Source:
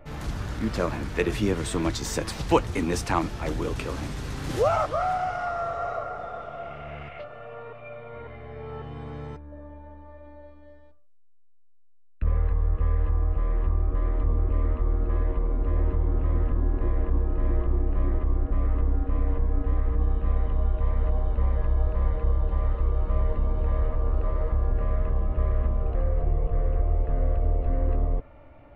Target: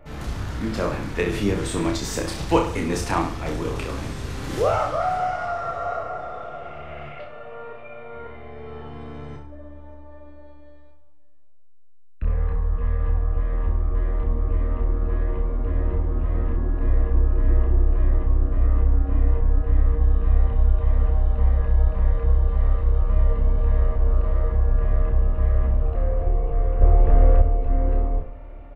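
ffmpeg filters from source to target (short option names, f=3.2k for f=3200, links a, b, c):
-filter_complex "[0:a]asplit=2[a][b];[b]aecho=0:1:30|63|99.3|139.2|183.2:0.631|0.398|0.251|0.158|0.1[c];[a][c]amix=inputs=2:normalize=0,asettb=1/sr,asplit=3[d][e][f];[d]atrim=end=26.814[g];[e]atrim=start=26.81:end=27.42,asetpts=PTS-STARTPTS,afade=t=in:d=0.004:c=qsin,afade=t=out:st=0.606:d=0.004:c=qsin,acontrast=88[h];[f]atrim=start=27.416[i];[g][h]acrossfade=d=0.004:c1=hsin:c2=qsin[j];[j][i]acrossfade=d=0.004:c1=qsin:c2=hsin,asplit=2[k][l];[l]aecho=0:1:576|1152:0.0891|0.016[m];[k][m]amix=inputs=2:normalize=0"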